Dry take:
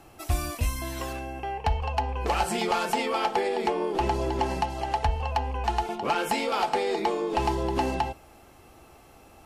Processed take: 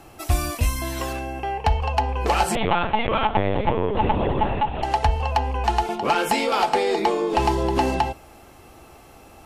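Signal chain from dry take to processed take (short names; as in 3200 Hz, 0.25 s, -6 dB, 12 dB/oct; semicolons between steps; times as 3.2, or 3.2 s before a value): 2.55–4.83 LPC vocoder at 8 kHz pitch kept; gain +5.5 dB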